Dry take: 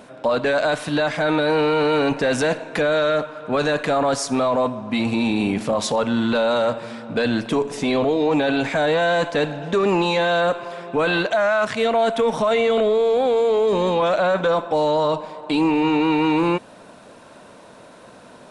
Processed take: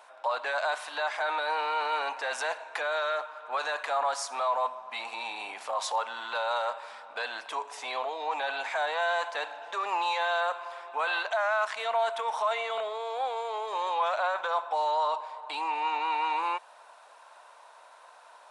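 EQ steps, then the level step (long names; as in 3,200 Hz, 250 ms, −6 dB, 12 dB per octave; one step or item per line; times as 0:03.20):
four-pole ladder high-pass 730 Hz, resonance 45%
0.0 dB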